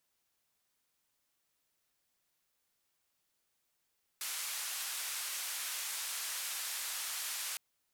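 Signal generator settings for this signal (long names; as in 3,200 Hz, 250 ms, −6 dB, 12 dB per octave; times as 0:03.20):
band-limited noise 1,100–13,000 Hz, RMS −39.5 dBFS 3.36 s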